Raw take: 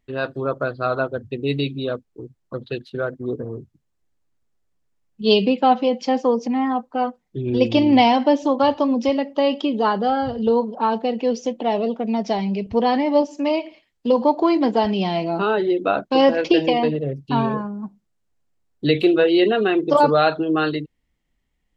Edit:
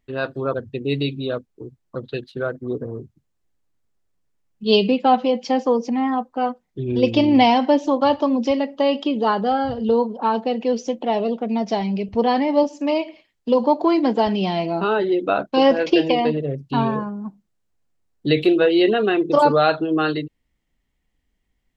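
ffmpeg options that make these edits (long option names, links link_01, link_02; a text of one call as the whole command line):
ffmpeg -i in.wav -filter_complex "[0:a]asplit=2[link_01][link_02];[link_01]atrim=end=0.542[link_03];[link_02]atrim=start=1.118[link_04];[link_03][link_04]acrossfade=duration=0.004:curve1=hsin:curve2=hsin" out.wav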